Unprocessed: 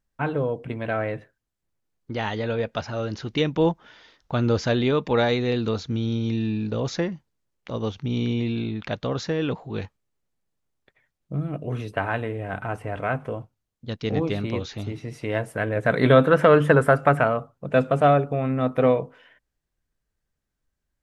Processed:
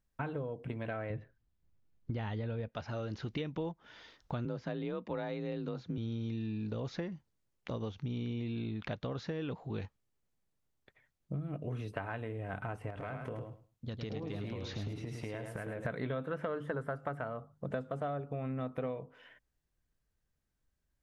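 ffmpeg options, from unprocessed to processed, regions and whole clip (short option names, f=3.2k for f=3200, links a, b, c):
-filter_complex "[0:a]asettb=1/sr,asplit=3[a][b][c];[a]atrim=end=1.104[d];[b]atrim=start=1.1:end=2.69,asetpts=PTS-STARTPTS,afade=t=in:d=0.004:c=qsin,afade=t=out:st=1.586:d=0.004:c=qsin,lowpass=4.9k,lowshelf=f=210:g=11.5[e];[c]atrim=start=2.686[f];[d][e]acrossfade=d=0.004:c1=hsin:c2=qsin[g];[g][f]acrossfade=d=0.004:c1=qsin:c2=hsin,asettb=1/sr,asplit=3[h][i][j];[h]atrim=end=4.454[k];[i]atrim=start=4.45:end=5.98,asetpts=PTS-STARTPTS,afade=t=in:d=0.004:c=qsin,afade=t=out:st=1.526:d=0.004:c=qsin,highshelf=f=3.4k:g=-10,afreqshift=37[l];[j]atrim=start=5.976[m];[k][l]acrossfade=d=0.004:c1=hsin:c2=qsin[n];[n][m]acrossfade=d=0.004:c1=qsin:c2=hsin,asettb=1/sr,asplit=3[o][p][q];[o]atrim=end=12.904[r];[p]atrim=start=12.9:end=15.85,asetpts=PTS-STARTPTS,afade=t=in:d=0.004:c=qsin,afade=t=out:st=2.946:d=0.004:c=qsin,acompressor=threshold=-32dB:ratio=6:attack=3.2:release=140:knee=1:detection=peak,aecho=1:1:106|212|318:0.501|0.0902|0.0162,atrim=end_sample=130095[s];[q]atrim=start=15.846[t];[r][s]acrossfade=d=0.004:c1=hsin:c2=qsin[u];[u][t]acrossfade=d=0.004:c1=qsin:c2=hsin,asettb=1/sr,asplit=3[v][w][x];[v]atrim=end=16.454[y];[w]atrim=start=16.45:end=18.21,asetpts=PTS-STARTPTS,afade=t=in:d=0.004:c=qsin,afade=t=out:st=1.756:d=0.004:c=qsin,equalizer=f=2.5k:w=6.4:g=-11.5,bandreject=f=50:t=h:w=6,bandreject=f=100:t=h:w=6,bandreject=f=150:t=h:w=6,bandreject=f=200:t=h:w=6[z];[x]atrim=start=18.206[aa];[y][z]acrossfade=d=0.004:c1=hsin:c2=qsin[ab];[ab][aa]acrossfade=d=0.004:c1=qsin:c2=hsin,acrossover=split=4400[ac][ad];[ad]acompressor=threshold=-52dB:ratio=4:attack=1:release=60[ae];[ac][ae]amix=inputs=2:normalize=0,equalizer=f=80:t=o:w=2.7:g=3,acompressor=threshold=-32dB:ratio=6,volume=-3.5dB"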